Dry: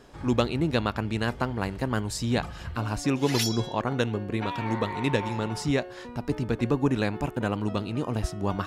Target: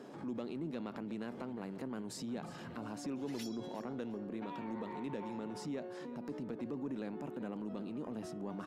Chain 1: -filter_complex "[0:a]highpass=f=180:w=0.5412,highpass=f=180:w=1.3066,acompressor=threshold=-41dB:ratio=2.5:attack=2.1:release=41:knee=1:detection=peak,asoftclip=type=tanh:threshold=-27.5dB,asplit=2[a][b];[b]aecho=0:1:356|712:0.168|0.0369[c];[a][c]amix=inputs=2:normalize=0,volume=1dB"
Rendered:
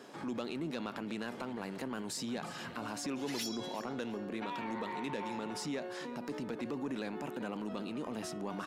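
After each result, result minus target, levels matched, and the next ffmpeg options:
compressor: peak gain reduction -6.5 dB; 1000 Hz band +3.0 dB
-filter_complex "[0:a]highpass=f=180:w=0.5412,highpass=f=180:w=1.3066,acompressor=threshold=-48.5dB:ratio=2.5:attack=2.1:release=41:knee=1:detection=peak,asoftclip=type=tanh:threshold=-27.5dB,asplit=2[a][b];[b]aecho=0:1:356|712:0.168|0.0369[c];[a][c]amix=inputs=2:normalize=0,volume=1dB"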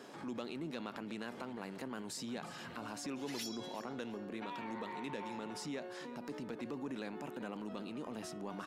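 1000 Hz band +3.0 dB
-filter_complex "[0:a]highpass=f=180:w=0.5412,highpass=f=180:w=1.3066,tiltshelf=f=820:g=6.5,acompressor=threshold=-48.5dB:ratio=2.5:attack=2.1:release=41:knee=1:detection=peak,asoftclip=type=tanh:threshold=-27.5dB,asplit=2[a][b];[b]aecho=0:1:356|712:0.168|0.0369[c];[a][c]amix=inputs=2:normalize=0,volume=1dB"

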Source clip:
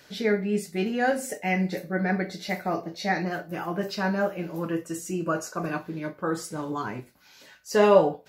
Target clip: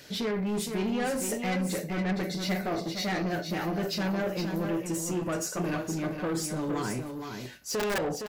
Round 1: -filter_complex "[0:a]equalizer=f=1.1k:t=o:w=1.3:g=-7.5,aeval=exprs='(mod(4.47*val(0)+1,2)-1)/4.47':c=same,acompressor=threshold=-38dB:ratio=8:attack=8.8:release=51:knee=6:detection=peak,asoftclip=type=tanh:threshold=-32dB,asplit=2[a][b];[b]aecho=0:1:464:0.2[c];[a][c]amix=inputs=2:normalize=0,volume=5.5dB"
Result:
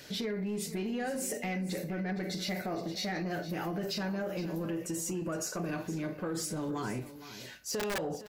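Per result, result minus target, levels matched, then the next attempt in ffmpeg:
compressor: peak gain reduction +10 dB; echo-to-direct -7.5 dB
-filter_complex "[0:a]equalizer=f=1.1k:t=o:w=1.3:g=-7.5,aeval=exprs='(mod(4.47*val(0)+1,2)-1)/4.47':c=same,acompressor=threshold=-26.5dB:ratio=8:attack=8.8:release=51:knee=6:detection=peak,asoftclip=type=tanh:threshold=-32dB,asplit=2[a][b];[b]aecho=0:1:464:0.2[c];[a][c]amix=inputs=2:normalize=0,volume=5.5dB"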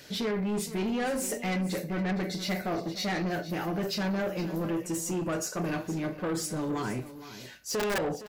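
echo-to-direct -7.5 dB
-filter_complex "[0:a]equalizer=f=1.1k:t=o:w=1.3:g=-7.5,aeval=exprs='(mod(4.47*val(0)+1,2)-1)/4.47':c=same,acompressor=threshold=-26.5dB:ratio=8:attack=8.8:release=51:knee=6:detection=peak,asoftclip=type=tanh:threshold=-32dB,asplit=2[a][b];[b]aecho=0:1:464:0.473[c];[a][c]amix=inputs=2:normalize=0,volume=5.5dB"

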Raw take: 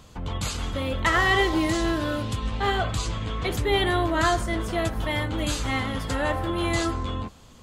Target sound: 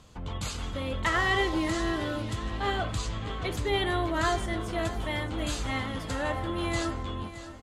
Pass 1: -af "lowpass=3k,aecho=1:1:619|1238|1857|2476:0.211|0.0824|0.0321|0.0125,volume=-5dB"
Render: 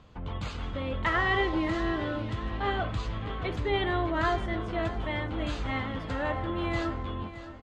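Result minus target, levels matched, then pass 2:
8000 Hz band -15.0 dB
-af "lowpass=12k,aecho=1:1:619|1238|1857|2476:0.211|0.0824|0.0321|0.0125,volume=-5dB"

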